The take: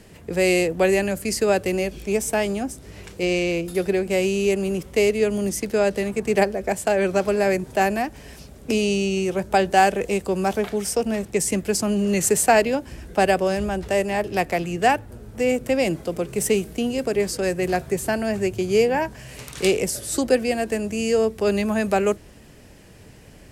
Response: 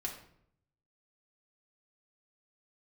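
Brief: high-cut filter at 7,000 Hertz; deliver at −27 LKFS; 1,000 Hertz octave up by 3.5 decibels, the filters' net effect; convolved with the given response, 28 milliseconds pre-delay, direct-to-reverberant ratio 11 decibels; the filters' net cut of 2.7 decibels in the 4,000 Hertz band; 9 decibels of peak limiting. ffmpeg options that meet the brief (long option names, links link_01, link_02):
-filter_complex "[0:a]lowpass=7000,equalizer=frequency=1000:width_type=o:gain=5.5,equalizer=frequency=4000:width_type=o:gain=-4,alimiter=limit=-11dB:level=0:latency=1,asplit=2[link_01][link_02];[1:a]atrim=start_sample=2205,adelay=28[link_03];[link_02][link_03]afir=irnorm=-1:irlink=0,volume=-11.5dB[link_04];[link_01][link_04]amix=inputs=2:normalize=0,volume=-4.5dB"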